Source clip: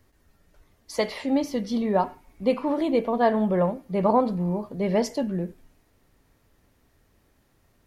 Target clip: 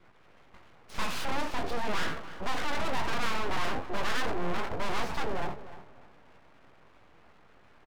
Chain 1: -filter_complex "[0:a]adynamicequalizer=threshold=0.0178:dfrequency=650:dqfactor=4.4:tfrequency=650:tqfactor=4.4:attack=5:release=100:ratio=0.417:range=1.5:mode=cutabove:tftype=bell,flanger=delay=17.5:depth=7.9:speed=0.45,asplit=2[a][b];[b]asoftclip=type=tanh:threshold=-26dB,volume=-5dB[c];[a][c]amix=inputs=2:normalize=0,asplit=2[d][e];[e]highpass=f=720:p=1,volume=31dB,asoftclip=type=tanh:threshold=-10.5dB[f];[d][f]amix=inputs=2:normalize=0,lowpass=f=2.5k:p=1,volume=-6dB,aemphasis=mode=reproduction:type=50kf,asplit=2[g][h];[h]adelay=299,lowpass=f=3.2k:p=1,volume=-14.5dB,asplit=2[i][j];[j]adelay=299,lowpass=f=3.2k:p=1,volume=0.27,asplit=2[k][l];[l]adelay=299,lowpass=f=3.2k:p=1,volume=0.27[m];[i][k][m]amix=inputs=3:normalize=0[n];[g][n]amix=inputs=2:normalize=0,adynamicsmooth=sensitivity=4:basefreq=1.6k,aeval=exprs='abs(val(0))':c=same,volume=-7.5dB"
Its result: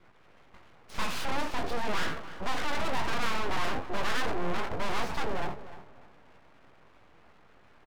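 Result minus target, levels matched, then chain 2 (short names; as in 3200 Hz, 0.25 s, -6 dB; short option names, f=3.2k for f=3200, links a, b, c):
soft clip: distortion -6 dB
-filter_complex "[0:a]adynamicequalizer=threshold=0.0178:dfrequency=650:dqfactor=4.4:tfrequency=650:tqfactor=4.4:attack=5:release=100:ratio=0.417:range=1.5:mode=cutabove:tftype=bell,flanger=delay=17.5:depth=7.9:speed=0.45,asplit=2[a][b];[b]asoftclip=type=tanh:threshold=-37dB,volume=-5dB[c];[a][c]amix=inputs=2:normalize=0,asplit=2[d][e];[e]highpass=f=720:p=1,volume=31dB,asoftclip=type=tanh:threshold=-10.5dB[f];[d][f]amix=inputs=2:normalize=0,lowpass=f=2.5k:p=1,volume=-6dB,aemphasis=mode=reproduction:type=50kf,asplit=2[g][h];[h]adelay=299,lowpass=f=3.2k:p=1,volume=-14.5dB,asplit=2[i][j];[j]adelay=299,lowpass=f=3.2k:p=1,volume=0.27,asplit=2[k][l];[l]adelay=299,lowpass=f=3.2k:p=1,volume=0.27[m];[i][k][m]amix=inputs=3:normalize=0[n];[g][n]amix=inputs=2:normalize=0,adynamicsmooth=sensitivity=4:basefreq=1.6k,aeval=exprs='abs(val(0))':c=same,volume=-7.5dB"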